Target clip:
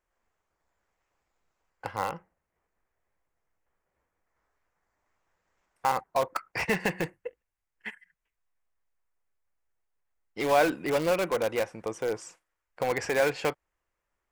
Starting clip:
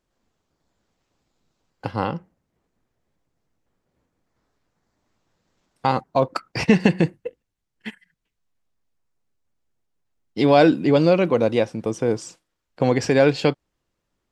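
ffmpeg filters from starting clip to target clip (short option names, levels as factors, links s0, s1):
-filter_complex "[0:a]equalizer=f=125:t=o:w=1:g=-9,equalizer=f=250:t=o:w=1:g=-10,equalizer=f=1000:t=o:w=1:g=3,equalizer=f=2000:t=o:w=1:g=6,equalizer=f=4000:t=o:w=1:g=-9,asplit=2[s0][s1];[s1]aeval=exprs='(mod(6.31*val(0)+1,2)-1)/6.31':c=same,volume=0.355[s2];[s0][s2]amix=inputs=2:normalize=0,volume=0.422"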